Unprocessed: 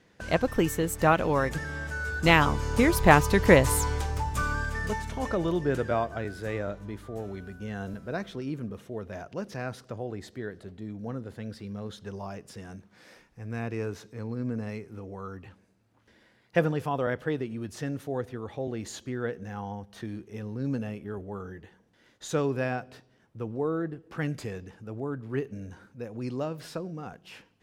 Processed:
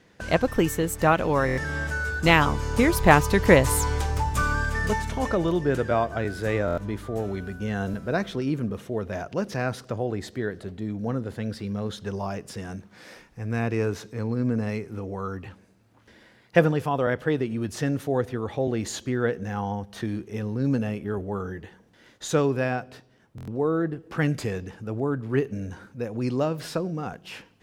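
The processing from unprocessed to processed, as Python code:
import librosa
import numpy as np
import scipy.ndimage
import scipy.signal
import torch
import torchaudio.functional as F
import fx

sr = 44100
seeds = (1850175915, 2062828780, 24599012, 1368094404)

p1 = fx.rider(x, sr, range_db=5, speed_s=0.5)
p2 = x + (p1 * librosa.db_to_amplitude(3.0))
p3 = fx.buffer_glitch(p2, sr, at_s=(1.46, 6.66, 23.36), block=1024, repeats=4)
y = p3 * librosa.db_to_amplitude(-3.5)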